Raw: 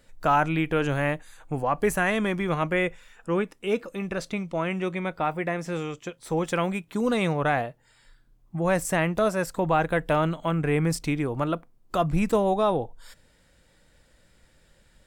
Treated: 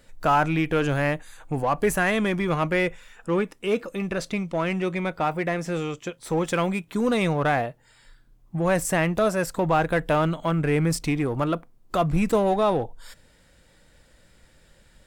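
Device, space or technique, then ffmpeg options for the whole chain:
parallel distortion: -filter_complex "[0:a]asplit=2[link_01][link_02];[link_02]asoftclip=type=hard:threshold=-28.5dB,volume=-6dB[link_03];[link_01][link_03]amix=inputs=2:normalize=0"

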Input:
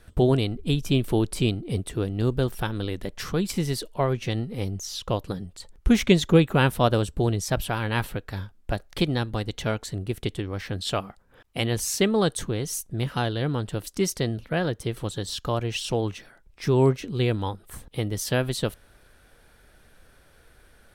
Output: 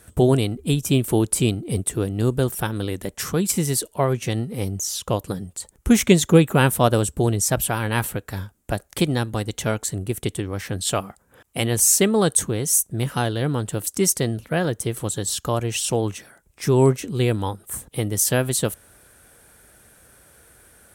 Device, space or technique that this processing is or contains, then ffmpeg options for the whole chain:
budget condenser microphone: -af "highpass=65,highshelf=frequency=5900:width_type=q:width=1.5:gain=9,volume=3.5dB"

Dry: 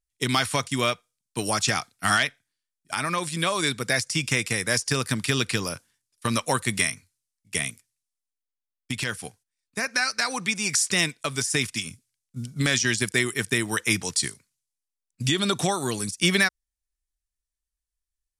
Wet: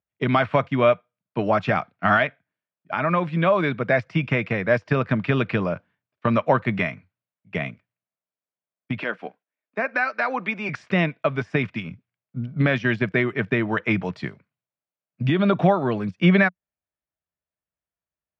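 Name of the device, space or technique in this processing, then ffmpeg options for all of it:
bass cabinet: -filter_complex "[0:a]asettb=1/sr,asplit=3[link_01][link_02][link_03];[link_01]atrim=end=8.994[link_04];[link_02]atrim=start=8.99:end=10.69,asetpts=PTS-STARTPTS,afade=type=in:duration=0.004:curve=qsin,afade=type=out:start_time=1.696:duration=0.004:curve=qsin,highpass=frequency=240:width=0.5412,highpass=frequency=240:width=1.3066[link_05];[link_03]atrim=start=10.686[link_06];[link_04][link_05]acrossfade=duration=0.004:curve1=hsin:curve2=qsin[link_07];[link_07][link_06]acrossfade=duration=0.004:curve1=qsin:curve2=hsin,highpass=frequency=87:width=0.5412,highpass=frequency=87:width=1.3066,equalizer=frequency=180:width_type=q:width=4:gain=6,equalizer=frequency=620:width_type=q:width=4:gain=9,equalizer=frequency=1900:width_type=q:width=4:gain=-4,lowpass=frequency=2300:width=0.5412,lowpass=frequency=2300:width=1.3066,volume=4dB"

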